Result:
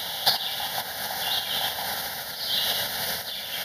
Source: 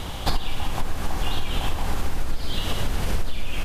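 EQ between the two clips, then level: high-pass 160 Hz 12 dB/octave; tilt EQ +3.5 dB/octave; static phaser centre 1.7 kHz, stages 8; +4.0 dB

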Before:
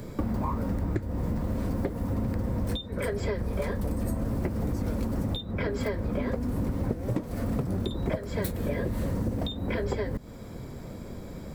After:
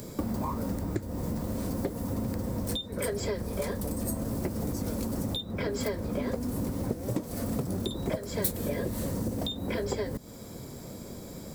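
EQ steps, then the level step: tone controls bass 0 dB, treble +10 dB; bass shelf 80 Hz -11 dB; peaking EQ 1.8 kHz -3.5 dB 1.7 oct; 0.0 dB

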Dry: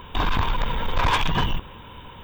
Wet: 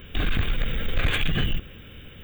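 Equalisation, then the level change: treble shelf 9.1 kHz +6.5 dB; static phaser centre 2.3 kHz, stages 4; 0.0 dB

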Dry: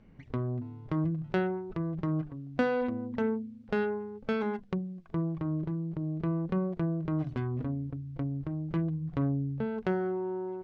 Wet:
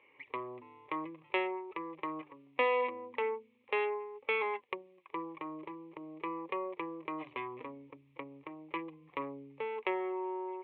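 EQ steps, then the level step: cabinet simulation 460–3700 Hz, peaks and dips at 610 Hz +6 dB, 1 kHz +6 dB, 2.3 kHz +9 dB; treble shelf 2 kHz +9.5 dB; static phaser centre 1 kHz, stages 8; 0.0 dB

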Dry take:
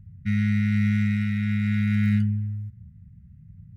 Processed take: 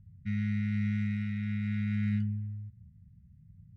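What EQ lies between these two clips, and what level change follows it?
distance through air 74 m; peaking EQ 1.4 kHz -2.5 dB 0.77 oct; -8.5 dB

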